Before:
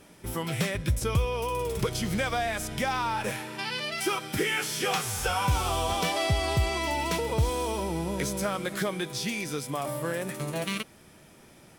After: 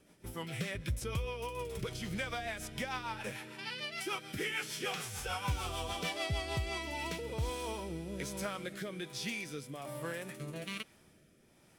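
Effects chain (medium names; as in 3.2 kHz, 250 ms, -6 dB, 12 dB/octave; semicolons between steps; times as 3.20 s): dynamic bell 2.5 kHz, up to +4 dB, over -44 dBFS, Q 0.81; rotary cabinet horn 6.7 Hz, later 1.2 Hz, at 6.34 s; trim -8.5 dB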